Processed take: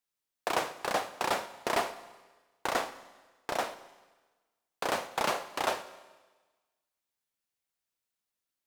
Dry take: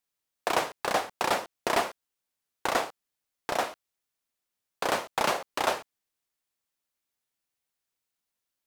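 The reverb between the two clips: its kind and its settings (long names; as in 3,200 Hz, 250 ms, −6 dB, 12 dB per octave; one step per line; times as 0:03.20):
four-comb reverb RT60 1.3 s, combs from 33 ms, DRR 13 dB
level −3.5 dB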